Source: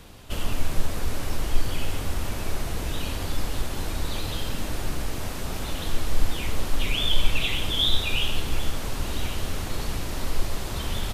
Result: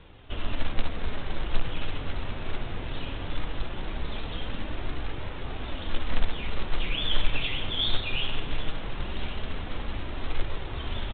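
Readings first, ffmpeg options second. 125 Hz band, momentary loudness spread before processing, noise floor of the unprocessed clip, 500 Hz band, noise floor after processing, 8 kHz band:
-4.5 dB, 8 LU, -32 dBFS, -3.5 dB, -36 dBFS, under -40 dB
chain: -af "aresample=8000,acrusher=bits=4:mode=log:mix=0:aa=0.000001,aresample=44100,flanger=delay=2:depth=6.4:regen=-56:speed=0.19:shape=triangular"

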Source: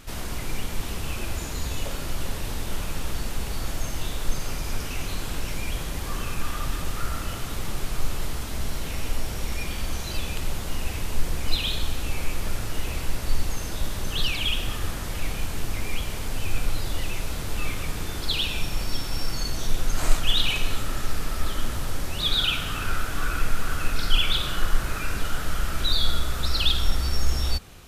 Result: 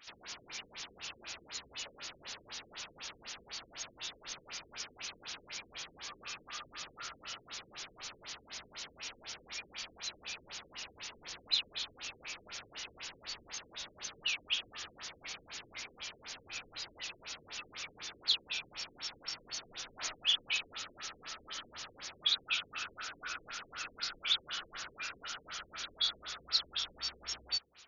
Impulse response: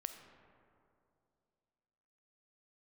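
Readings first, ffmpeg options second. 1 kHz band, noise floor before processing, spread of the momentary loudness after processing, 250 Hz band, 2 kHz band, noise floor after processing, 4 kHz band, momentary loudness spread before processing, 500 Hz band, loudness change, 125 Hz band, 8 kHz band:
-14.0 dB, -32 dBFS, 14 LU, -25.0 dB, -9.5 dB, -64 dBFS, -7.5 dB, 9 LU, -19.0 dB, -10.0 dB, -33.5 dB, -10.0 dB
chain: -filter_complex "[0:a]aderivative,asplit=2[s0][s1];[1:a]atrim=start_sample=2205,asetrate=43659,aresample=44100[s2];[s1][s2]afir=irnorm=-1:irlink=0,volume=0.2[s3];[s0][s3]amix=inputs=2:normalize=0,afftfilt=real='re*lt(b*sr/1024,490*pow(7200/490,0.5+0.5*sin(2*PI*4*pts/sr)))':imag='im*lt(b*sr/1024,490*pow(7200/490,0.5+0.5*sin(2*PI*4*pts/sr)))':win_size=1024:overlap=0.75,volume=1.41"

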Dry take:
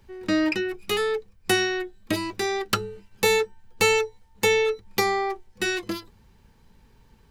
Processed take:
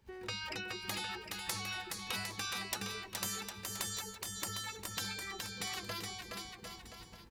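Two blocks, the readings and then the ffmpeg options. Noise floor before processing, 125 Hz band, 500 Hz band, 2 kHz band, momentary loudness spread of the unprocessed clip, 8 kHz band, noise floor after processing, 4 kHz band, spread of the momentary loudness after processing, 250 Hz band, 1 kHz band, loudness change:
-58 dBFS, -9.5 dB, -25.5 dB, -14.5 dB, 10 LU, -6.5 dB, -55 dBFS, -9.5 dB, 7 LU, -19.5 dB, -15.0 dB, -14.5 dB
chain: -af "agate=range=0.251:threshold=0.002:ratio=16:detection=peak,highpass=45,afftfilt=real='re*lt(hypot(re,im),0.126)':imag='im*lt(hypot(re,im),0.126)':win_size=1024:overlap=0.75,acompressor=threshold=0.00282:ratio=1.5,aecho=1:1:420|756|1025|1240|1412:0.631|0.398|0.251|0.158|0.1,volume=1.12"

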